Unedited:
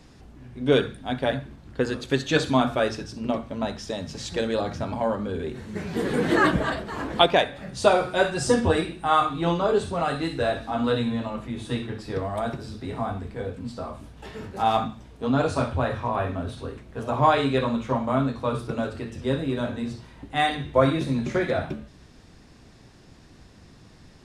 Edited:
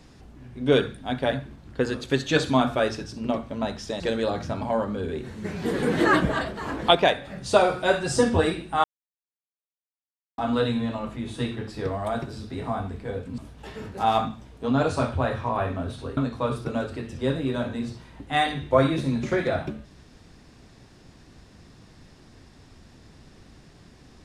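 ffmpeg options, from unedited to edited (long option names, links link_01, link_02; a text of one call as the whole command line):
ffmpeg -i in.wav -filter_complex "[0:a]asplit=6[link_01][link_02][link_03][link_04][link_05][link_06];[link_01]atrim=end=4.002[link_07];[link_02]atrim=start=4.308:end=9.15,asetpts=PTS-STARTPTS,afade=type=out:start_time=4.838:duration=0.004:curve=hsin[link_08];[link_03]atrim=start=9.15:end=10.69,asetpts=PTS-STARTPTS,volume=0[link_09];[link_04]atrim=start=10.69:end=13.692,asetpts=PTS-STARTPTS,afade=type=in:duration=0.004:curve=hsin[link_10];[link_05]atrim=start=13.968:end=16.762[link_11];[link_06]atrim=start=18.198[link_12];[link_08][link_09][link_10]concat=n=3:v=0:a=1[link_13];[link_07][link_13]acrossfade=duration=0.004:curve1=hsin:curve2=hsin[link_14];[link_14][link_11]acrossfade=duration=0.004:curve1=hsin:curve2=hsin[link_15];[link_15][link_12]acrossfade=duration=0.004:curve1=hsin:curve2=hsin" out.wav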